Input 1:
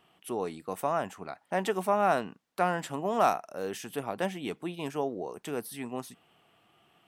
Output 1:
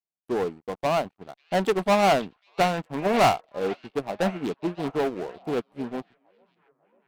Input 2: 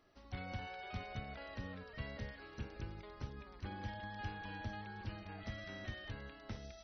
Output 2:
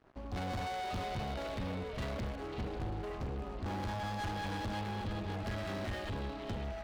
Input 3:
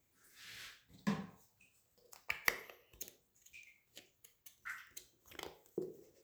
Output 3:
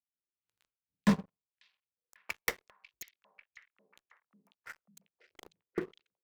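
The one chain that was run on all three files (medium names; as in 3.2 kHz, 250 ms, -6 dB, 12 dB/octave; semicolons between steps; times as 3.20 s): local Wiener filter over 25 samples; waveshaping leveller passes 5; on a send: repeats whose band climbs or falls 544 ms, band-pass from 3.3 kHz, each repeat -0.7 oct, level -4 dB; on the sum: Chebyshev shaper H 3 -24 dB, 8 -40 dB, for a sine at -9 dBFS; upward expansion 2.5:1, over -33 dBFS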